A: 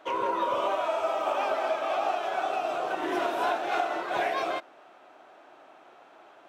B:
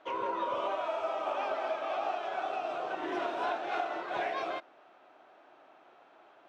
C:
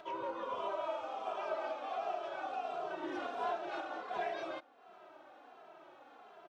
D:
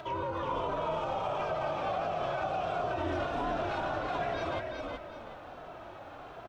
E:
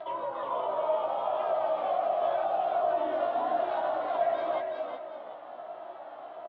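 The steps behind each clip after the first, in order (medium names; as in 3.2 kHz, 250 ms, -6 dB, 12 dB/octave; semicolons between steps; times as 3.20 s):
low-pass 5.2 kHz 12 dB/octave; trim -5.5 dB
peaking EQ 2.2 kHz -3.5 dB 1 oct; upward compressor, threshold -43 dBFS; endless flanger 2.6 ms -1.4 Hz; trim -1.5 dB
octave divider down 2 oct, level +1 dB; peak limiter -35 dBFS, peak gain reduction 9 dB; on a send: frequency-shifting echo 373 ms, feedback 31%, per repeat -49 Hz, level -4 dB; on the sum: trim +8.5 dB
vibrato 0.89 Hz 37 cents; cabinet simulation 390–3300 Hz, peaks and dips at 450 Hz -5 dB, 660 Hz +8 dB, 1.5 kHz -6 dB, 2.5 kHz -10 dB; doubling 16 ms -4.5 dB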